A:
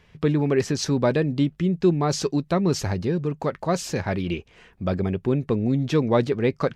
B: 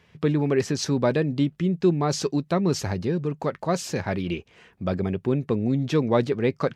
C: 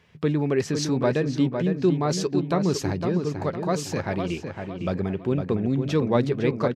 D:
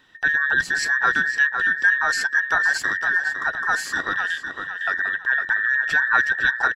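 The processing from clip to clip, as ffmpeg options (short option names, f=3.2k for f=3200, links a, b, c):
-af "highpass=81,volume=-1dB"
-filter_complex "[0:a]asplit=2[a][b];[b]adelay=507,lowpass=f=2.7k:p=1,volume=-6dB,asplit=2[c][d];[d]adelay=507,lowpass=f=2.7k:p=1,volume=0.4,asplit=2[e][f];[f]adelay=507,lowpass=f=2.7k:p=1,volume=0.4,asplit=2[g][h];[h]adelay=507,lowpass=f=2.7k:p=1,volume=0.4,asplit=2[i][j];[j]adelay=507,lowpass=f=2.7k:p=1,volume=0.4[k];[a][c][e][g][i][k]amix=inputs=6:normalize=0,volume=-1dB"
-af "afftfilt=real='real(if(between(b,1,1012),(2*floor((b-1)/92)+1)*92-b,b),0)':imag='imag(if(between(b,1,1012),(2*floor((b-1)/92)+1)*92-b,b),0)*if(between(b,1,1012),-1,1)':win_size=2048:overlap=0.75,volume=2.5dB"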